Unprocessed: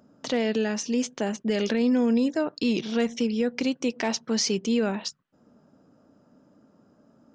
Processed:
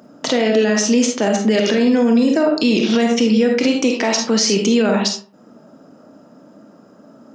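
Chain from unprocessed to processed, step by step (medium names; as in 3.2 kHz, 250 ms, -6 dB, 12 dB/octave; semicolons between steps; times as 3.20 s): high-pass 160 Hz 12 dB/octave; reverberation RT60 0.45 s, pre-delay 5 ms, DRR 2.5 dB; loudness maximiser +19 dB; trim -6 dB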